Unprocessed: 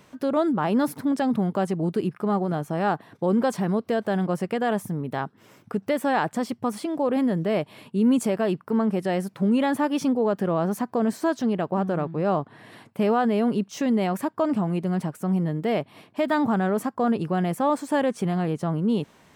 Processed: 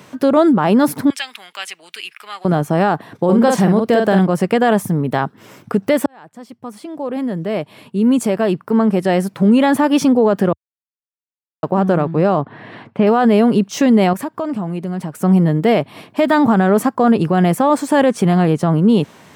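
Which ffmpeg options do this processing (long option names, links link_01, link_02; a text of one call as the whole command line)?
ffmpeg -i in.wav -filter_complex "[0:a]asettb=1/sr,asplit=3[link_01][link_02][link_03];[link_01]atrim=end=1.104[link_04];[link_02]atrim=start=1.1:end=2.45,asetpts=PTS-STARTPTS,afade=type=in:duration=0.004:curve=qsin,afade=type=out:start_time=1.346:duration=0.004:curve=qsin,highpass=frequency=2500:width_type=q:width=2.5[link_05];[link_03]atrim=start=2.446[link_06];[link_04][link_05]acrossfade=duration=0.004:curve1=hsin:curve2=qsin[link_07];[link_07][link_06]acrossfade=duration=0.004:curve1=qsin:curve2=hsin,asettb=1/sr,asplit=3[link_08][link_09][link_10];[link_08]atrim=end=3.244[link_11];[link_09]atrim=start=3.24:end=4.19,asetpts=PTS-STARTPTS,afade=type=in:duration=0.004:curve=qsin,afade=type=out:start_time=0.946:duration=0.004:curve=qsin,asplit=2[link_12][link_13];[link_13]adelay=47,volume=-5dB[link_14];[link_12][link_14]amix=inputs=2:normalize=0,atrim=end_sample=41895[link_15];[link_10]atrim=start=4.186[link_16];[link_11][link_15]acrossfade=duration=0.004:curve1=hsin:curve2=qsin[link_17];[link_17][link_16]acrossfade=duration=0.004:curve1=qsin:curve2=hsin,asettb=1/sr,asplit=3[link_18][link_19][link_20];[link_18]atrim=end=12.414[link_21];[link_19]atrim=start=12.41:end=13.07,asetpts=PTS-STARTPTS,afade=type=in:duration=0.004:curve=qsin,afade=type=out:start_time=0.656:duration=0.004:curve=qsin,lowpass=2900[link_22];[link_20]atrim=start=13.066[link_23];[link_21][link_22]acrossfade=duration=0.004:curve1=hsin:curve2=qsin[link_24];[link_24][link_23]acrossfade=duration=0.004:curve1=qsin:curve2=hsin,asettb=1/sr,asplit=3[link_25][link_26][link_27];[link_25]atrim=end=14.134[link_28];[link_26]atrim=start=14.13:end=15.23,asetpts=PTS-STARTPTS,afade=type=in:duration=0.004:curve=qsin,afade=type=out:start_time=1.096:duration=0.004:curve=qsin,acompressor=threshold=-38dB:ratio=2:attack=3.2:release=140:knee=1:detection=peak[link_29];[link_27]atrim=start=15.226[link_30];[link_28][link_29]acrossfade=duration=0.004:curve1=hsin:curve2=qsin[link_31];[link_31][link_30]acrossfade=duration=0.004:curve1=qsin:curve2=hsin,asplit=4[link_32][link_33][link_34][link_35];[link_32]atrim=end=6.06,asetpts=PTS-STARTPTS,afade=type=out:start_time=6.056:duration=0.004:curve=hsin[link_36];[link_33]atrim=start=6.06:end=10.53,asetpts=PTS-STARTPTS,afade=type=in:duration=3.82,afade=type=out:start_time=4.466:duration=0.004:curve=hsin[link_37];[link_34]atrim=start=10.53:end=11.63,asetpts=PTS-STARTPTS,volume=0[link_38];[link_35]atrim=start=11.63,asetpts=PTS-STARTPTS,afade=type=in:duration=0.004:curve=hsin[link_39];[link_36][link_37][link_38][link_39]concat=n=4:v=0:a=1,highpass=frequency=81:width=0.5412,highpass=frequency=81:width=1.3066,alimiter=level_in=15.5dB:limit=-1dB:release=50:level=0:latency=1,volume=-4dB" out.wav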